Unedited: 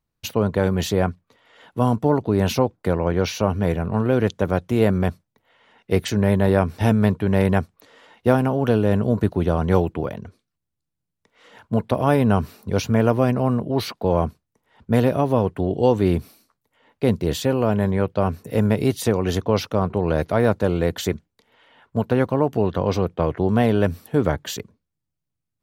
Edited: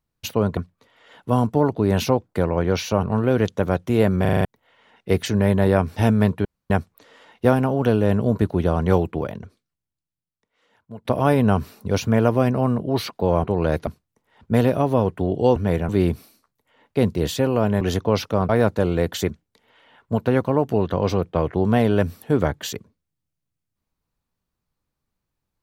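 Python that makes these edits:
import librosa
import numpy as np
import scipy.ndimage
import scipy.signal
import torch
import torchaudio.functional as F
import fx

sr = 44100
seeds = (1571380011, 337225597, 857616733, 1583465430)

y = fx.edit(x, sr, fx.cut(start_s=0.57, length_s=0.49),
    fx.move(start_s=3.52, length_s=0.33, to_s=15.95),
    fx.stutter_over(start_s=5.03, slice_s=0.04, count=6),
    fx.room_tone_fill(start_s=7.27, length_s=0.25),
    fx.fade_out_to(start_s=10.22, length_s=1.65, curve='qua', floor_db=-17.0),
    fx.cut(start_s=17.87, length_s=1.35),
    fx.move(start_s=19.9, length_s=0.43, to_s=14.26), tone=tone)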